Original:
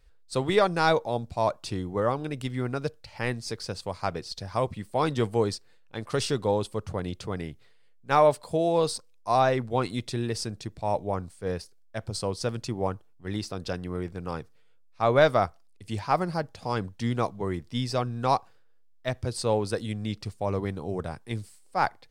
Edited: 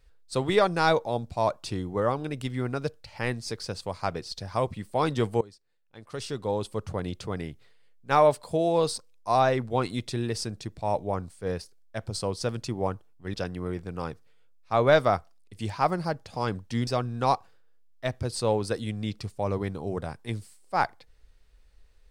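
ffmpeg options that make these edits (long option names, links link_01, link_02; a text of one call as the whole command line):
ffmpeg -i in.wav -filter_complex "[0:a]asplit=4[link_01][link_02][link_03][link_04];[link_01]atrim=end=5.41,asetpts=PTS-STARTPTS,afade=type=out:start_time=5.406:duration=0.004:curve=hsin:silence=0.0944061[link_05];[link_02]atrim=start=5.41:end=13.342,asetpts=PTS-STARTPTS,afade=type=in:duration=1.38:curve=qua:silence=0.0944061[link_06];[link_03]atrim=start=13.628:end=17.162[link_07];[link_04]atrim=start=17.888[link_08];[link_05][link_06]concat=n=2:v=0:a=1[link_09];[link_09][link_07]acrossfade=duration=0.004:curve1=hsin:curve2=hsin[link_10];[link_10][link_08]acrossfade=duration=0.004:curve1=hsin:curve2=hsin" out.wav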